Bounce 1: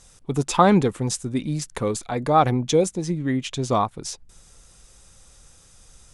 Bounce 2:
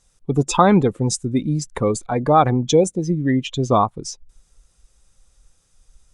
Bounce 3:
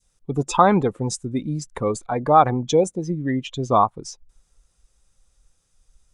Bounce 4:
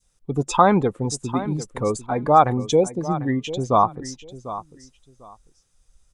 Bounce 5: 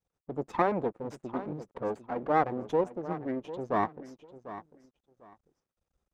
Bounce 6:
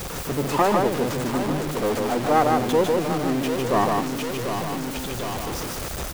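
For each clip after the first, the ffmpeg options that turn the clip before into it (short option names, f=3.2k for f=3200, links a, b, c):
-filter_complex "[0:a]afftdn=nr=16:nf=-32,asplit=2[a][b];[b]alimiter=limit=-11dB:level=0:latency=1:release=455,volume=2dB[c];[a][c]amix=inputs=2:normalize=0,volume=-2dB"
-af "adynamicequalizer=threshold=0.0447:dfrequency=960:dqfactor=0.7:tfrequency=960:tqfactor=0.7:attack=5:release=100:ratio=0.375:range=3.5:mode=boostabove:tftype=bell,volume=-5.5dB"
-af "aecho=1:1:747|1494:0.2|0.0399"
-af "aeval=exprs='max(val(0),0)':c=same,bandpass=f=430:t=q:w=0.6:csg=0,volume=-4dB"
-af "aeval=exprs='val(0)+0.5*0.0376*sgn(val(0))':c=same,aecho=1:1:151:0.708,volume=4.5dB"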